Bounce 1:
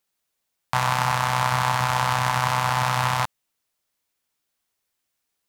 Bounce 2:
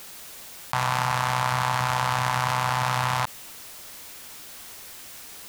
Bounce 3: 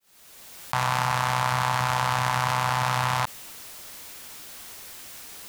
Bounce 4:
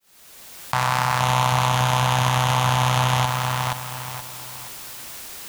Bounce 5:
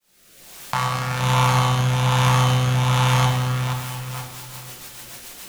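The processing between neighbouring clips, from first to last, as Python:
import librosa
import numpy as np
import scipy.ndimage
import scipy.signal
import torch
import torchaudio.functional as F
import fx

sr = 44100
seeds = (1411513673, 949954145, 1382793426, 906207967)

y1 = fx.env_flatten(x, sr, amount_pct=70)
y1 = F.gain(torch.from_numpy(y1), -4.0).numpy()
y2 = fx.fade_in_head(y1, sr, length_s=0.69)
y3 = fx.echo_feedback(y2, sr, ms=474, feedback_pct=34, wet_db=-3.0)
y3 = F.gain(torch.from_numpy(y3), 3.5).numpy()
y4 = fx.rotary_switch(y3, sr, hz=1.2, then_hz=7.0, switch_at_s=3.67)
y4 = fx.room_shoebox(y4, sr, seeds[0], volume_m3=340.0, walls='mixed', distance_m=0.89)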